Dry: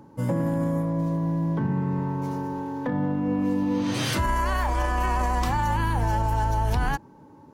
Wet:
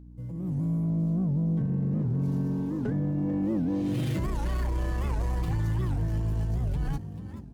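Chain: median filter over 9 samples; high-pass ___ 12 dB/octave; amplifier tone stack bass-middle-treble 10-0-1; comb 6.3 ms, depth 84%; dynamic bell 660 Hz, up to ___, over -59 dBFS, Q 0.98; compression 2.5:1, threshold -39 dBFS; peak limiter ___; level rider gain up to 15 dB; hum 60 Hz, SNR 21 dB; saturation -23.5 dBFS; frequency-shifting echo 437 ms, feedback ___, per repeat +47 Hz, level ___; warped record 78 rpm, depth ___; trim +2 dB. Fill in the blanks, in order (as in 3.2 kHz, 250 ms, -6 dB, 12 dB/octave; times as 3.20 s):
64 Hz, +5 dB, -36.5 dBFS, 38%, -12.5 dB, 250 cents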